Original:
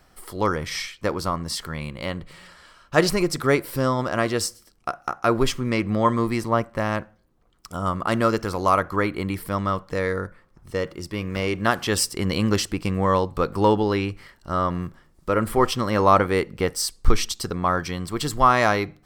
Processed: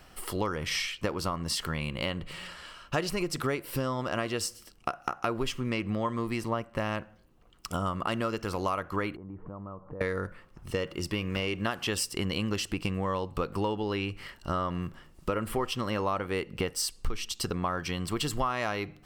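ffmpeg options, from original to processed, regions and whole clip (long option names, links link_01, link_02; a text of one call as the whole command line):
ffmpeg -i in.wav -filter_complex "[0:a]asettb=1/sr,asplit=3[link_01][link_02][link_03];[link_01]atrim=end=9.164[link_04];[link_02]atrim=start=9.16:end=10.01,asetpts=PTS-STARTPTS,afade=type=in:duration=0.004:curve=qsin,afade=type=out:start_time=0.846:duration=0.004:curve=qsin,lowpass=frequency=1100:width=0.5412,lowpass=frequency=1100:width=1.3066,acompressor=threshold=-41dB:ratio=6:attack=3.2:release=140:knee=1:detection=peak[link_05];[link_03]atrim=start=10.006[link_06];[link_04][link_05]acrossfade=duration=0.004:curve1=hsin:curve2=qsin[link_07];[link_07][link_06]acrossfade=duration=0.004:curve1=qsin:curve2=hsin,equalizer=frequency=2800:width=4.9:gain=9,acompressor=threshold=-30dB:ratio=6,volume=2.5dB" out.wav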